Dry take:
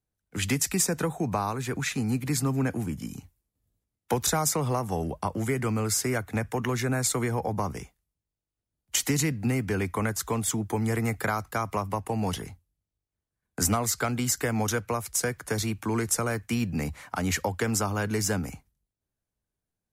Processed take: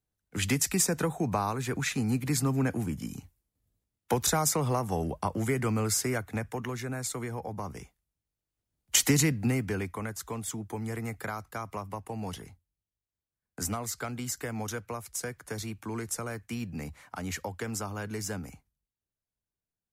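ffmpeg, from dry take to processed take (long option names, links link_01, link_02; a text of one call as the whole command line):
ffmpeg -i in.wav -af "volume=10dB,afade=type=out:start_time=5.84:duration=0.95:silence=0.446684,afade=type=in:start_time=7.61:duration=1.37:silence=0.281838,afade=type=out:start_time=8.98:duration=1:silence=0.281838" out.wav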